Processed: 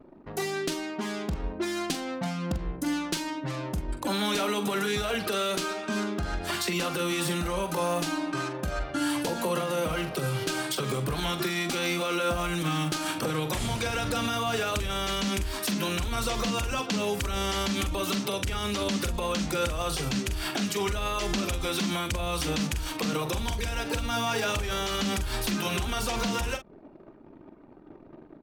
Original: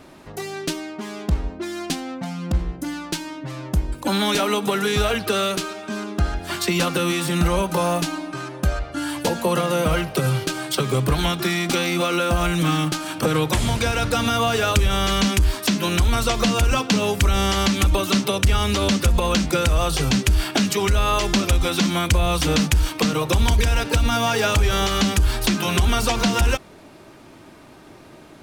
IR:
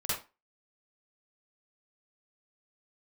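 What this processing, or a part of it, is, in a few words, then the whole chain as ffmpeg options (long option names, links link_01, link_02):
stacked limiters: -filter_complex "[0:a]anlmdn=0.251,alimiter=limit=-15dB:level=0:latency=1:release=217,alimiter=limit=-19.5dB:level=0:latency=1:release=76,equalizer=frequency=64:width=0.55:gain=-5,asplit=2[link_01][link_02];[link_02]adelay=44,volume=-9.5dB[link_03];[link_01][link_03]amix=inputs=2:normalize=0"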